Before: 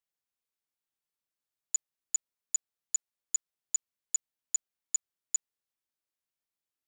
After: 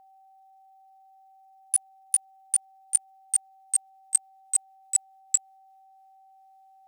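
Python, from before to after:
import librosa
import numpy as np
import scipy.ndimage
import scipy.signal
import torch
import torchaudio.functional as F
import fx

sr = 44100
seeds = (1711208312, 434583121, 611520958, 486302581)

y = fx.pitch_glide(x, sr, semitones=8.0, runs='ending unshifted')
y = y + 10.0 ** (-62.0 / 20.0) * np.sin(2.0 * np.pi * 770.0 * np.arange(len(y)) / sr)
y = y * 10.0 ** (8.5 / 20.0)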